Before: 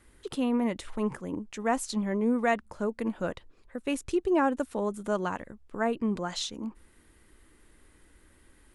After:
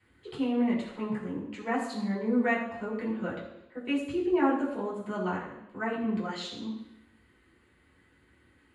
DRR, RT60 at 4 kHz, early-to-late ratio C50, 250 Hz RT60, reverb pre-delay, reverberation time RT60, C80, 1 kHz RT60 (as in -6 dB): -8.0 dB, 0.90 s, 5.0 dB, 0.85 s, 3 ms, 0.85 s, 7.0 dB, 0.85 s